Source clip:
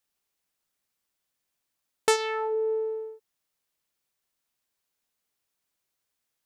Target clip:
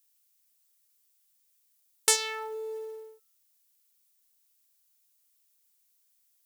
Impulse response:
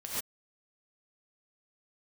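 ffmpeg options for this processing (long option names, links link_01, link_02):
-af "crystalizer=i=9:c=0,acrusher=bits=6:mode=log:mix=0:aa=0.000001,bandreject=frequency=120.2:width_type=h:width=4,bandreject=frequency=240.4:width_type=h:width=4,bandreject=frequency=360.6:width_type=h:width=4,bandreject=frequency=480.8:width_type=h:width=4,bandreject=frequency=601:width_type=h:width=4,bandreject=frequency=721.2:width_type=h:width=4,bandreject=frequency=841.4:width_type=h:width=4,bandreject=frequency=961.6:width_type=h:width=4,bandreject=frequency=1081.8:width_type=h:width=4,bandreject=frequency=1202:width_type=h:width=4,bandreject=frequency=1322.2:width_type=h:width=4,bandreject=frequency=1442.4:width_type=h:width=4,bandreject=frequency=1562.6:width_type=h:width=4,bandreject=frequency=1682.8:width_type=h:width=4,bandreject=frequency=1803:width_type=h:width=4,bandreject=frequency=1923.2:width_type=h:width=4,bandreject=frequency=2043.4:width_type=h:width=4,bandreject=frequency=2163.6:width_type=h:width=4,bandreject=frequency=2283.8:width_type=h:width=4,bandreject=frequency=2404:width_type=h:width=4,bandreject=frequency=2524.2:width_type=h:width=4,bandreject=frequency=2644.4:width_type=h:width=4,bandreject=frequency=2764.6:width_type=h:width=4,bandreject=frequency=2884.8:width_type=h:width=4,bandreject=frequency=3005:width_type=h:width=4,bandreject=frequency=3125.2:width_type=h:width=4,bandreject=frequency=3245.4:width_type=h:width=4,bandreject=frequency=3365.6:width_type=h:width=4,bandreject=frequency=3485.8:width_type=h:width=4,bandreject=frequency=3606:width_type=h:width=4,bandreject=frequency=3726.2:width_type=h:width=4,bandreject=frequency=3846.4:width_type=h:width=4,bandreject=frequency=3966.6:width_type=h:width=4,bandreject=frequency=4086.8:width_type=h:width=4,bandreject=frequency=4207:width_type=h:width=4,bandreject=frequency=4327.2:width_type=h:width=4,bandreject=frequency=4447.4:width_type=h:width=4,bandreject=frequency=4567.6:width_type=h:width=4,volume=-11dB"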